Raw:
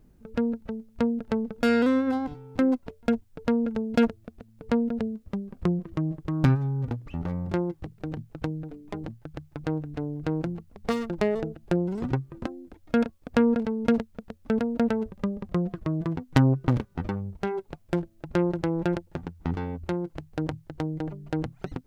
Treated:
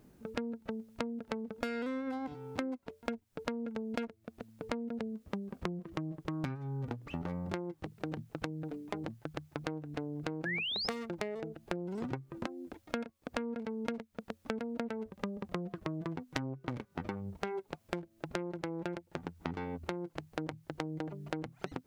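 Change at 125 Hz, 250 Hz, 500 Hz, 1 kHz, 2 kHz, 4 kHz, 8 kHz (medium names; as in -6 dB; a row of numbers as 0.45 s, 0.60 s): -14.0 dB, -12.5 dB, -10.5 dB, -7.5 dB, -5.0 dB, +0.5 dB, no reading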